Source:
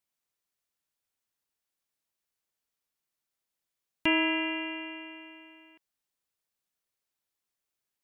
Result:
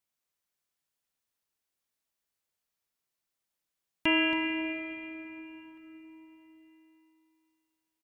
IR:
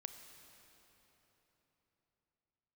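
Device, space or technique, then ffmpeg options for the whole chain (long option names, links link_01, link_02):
cave: -filter_complex "[0:a]aecho=1:1:276:0.299[link_01];[1:a]atrim=start_sample=2205[link_02];[link_01][link_02]afir=irnorm=-1:irlink=0,volume=4dB"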